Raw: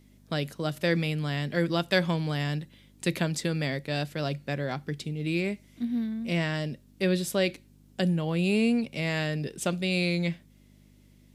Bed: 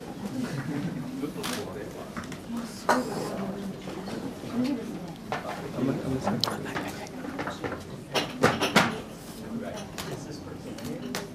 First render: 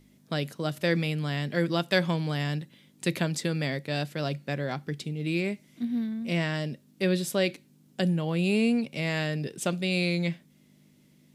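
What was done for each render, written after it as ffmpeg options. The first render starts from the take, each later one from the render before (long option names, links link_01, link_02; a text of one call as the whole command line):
ffmpeg -i in.wav -af "bandreject=frequency=50:width_type=h:width=4,bandreject=frequency=100:width_type=h:width=4" out.wav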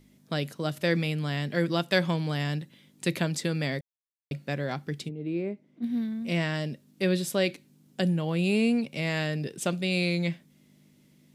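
ffmpeg -i in.wav -filter_complex "[0:a]asplit=3[link_01][link_02][link_03];[link_01]afade=type=out:start_time=5.08:duration=0.02[link_04];[link_02]bandpass=frequency=390:width_type=q:width=0.82,afade=type=in:start_time=5.08:duration=0.02,afade=type=out:start_time=5.82:duration=0.02[link_05];[link_03]afade=type=in:start_time=5.82:duration=0.02[link_06];[link_04][link_05][link_06]amix=inputs=3:normalize=0,asplit=3[link_07][link_08][link_09];[link_07]atrim=end=3.81,asetpts=PTS-STARTPTS,afade=type=out:start_time=3.806:duration=0.004:curve=hsin[link_10];[link_08]atrim=start=3.81:end=4.31,asetpts=PTS-STARTPTS,volume=0[link_11];[link_09]atrim=start=4.31,asetpts=PTS-STARTPTS,afade=type=in:duration=0.004:curve=hsin[link_12];[link_10][link_11][link_12]concat=n=3:v=0:a=1" out.wav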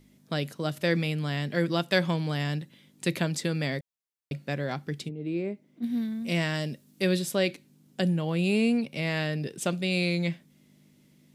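ffmpeg -i in.wav -filter_complex "[0:a]asettb=1/sr,asplit=3[link_01][link_02][link_03];[link_01]atrim=end=5.224[link_04];[link_02]atrim=start=5.22:end=7.19,asetpts=PTS-STARTPTS,afade=type=in:duration=0.004:curve=qsin,afade=type=out:start_time=1.966:duration=0.004:curve=qsin,highshelf=frequency=5000:gain=7.5[link_05];[link_03]atrim=start=7.186[link_06];[link_04][link_05]acrossfade=duration=0.004:curve1=hsin:curve2=qsin[link_07];[link_07][link_06]acrossfade=duration=0.004:curve1=qsin:curve2=hsin,asettb=1/sr,asplit=3[link_08][link_09][link_10];[link_08]atrim=end=8.774[link_11];[link_09]atrim=start=8.77:end=9.44,asetpts=PTS-STARTPTS,afade=type=in:duration=0.004:curve=qsin,afade=type=out:start_time=0.666:duration=0.004:curve=qsin,equalizer=frequency=7200:width=6.2:gain=-8[link_12];[link_10]atrim=start=9.436[link_13];[link_11][link_12]acrossfade=duration=0.004:curve1=hsin:curve2=qsin[link_14];[link_14][link_13]acrossfade=duration=0.004:curve1=qsin:curve2=hsin" out.wav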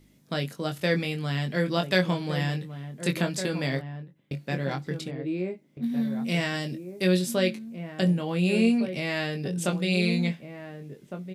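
ffmpeg -i in.wav -filter_complex "[0:a]asplit=2[link_01][link_02];[link_02]adelay=22,volume=-5.5dB[link_03];[link_01][link_03]amix=inputs=2:normalize=0,asplit=2[link_04][link_05];[link_05]adelay=1458,volume=-9dB,highshelf=frequency=4000:gain=-32.8[link_06];[link_04][link_06]amix=inputs=2:normalize=0" out.wav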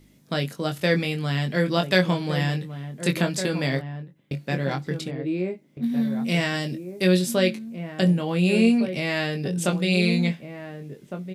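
ffmpeg -i in.wav -af "volume=3.5dB" out.wav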